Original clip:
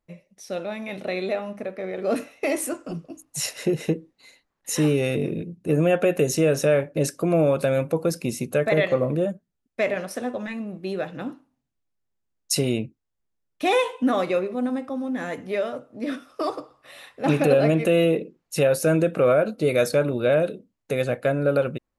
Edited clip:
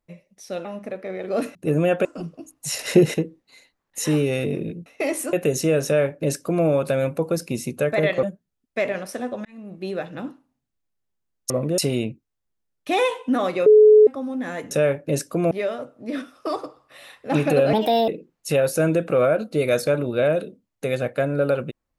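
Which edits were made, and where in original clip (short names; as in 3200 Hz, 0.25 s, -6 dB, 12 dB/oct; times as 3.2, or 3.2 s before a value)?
0.65–1.39 cut
2.29–2.76 swap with 5.57–6.07
3.5–3.85 gain +8.5 dB
6.59–7.39 copy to 15.45
8.97–9.25 move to 12.52
10.47–10.82 fade in
14.4–14.81 bleep 427 Hz -7.5 dBFS
17.67–18.15 speed 137%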